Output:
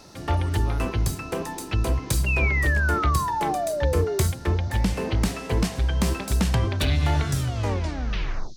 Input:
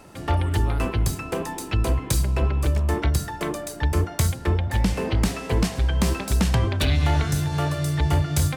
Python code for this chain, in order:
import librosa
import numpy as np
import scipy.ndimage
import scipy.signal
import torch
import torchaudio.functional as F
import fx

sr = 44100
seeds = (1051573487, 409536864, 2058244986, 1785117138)

y = fx.tape_stop_end(x, sr, length_s=1.3)
y = fx.dmg_noise_band(y, sr, seeds[0], low_hz=3700.0, high_hz=6400.0, level_db=-54.0)
y = fx.spec_paint(y, sr, seeds[1], shape='fall', start_s=2.26, length_s=1.97, low_hz=370.0, high_hz=2800.0, level_db=-25.0)
y = y * 10.0 ** (-1.5 / 20.0)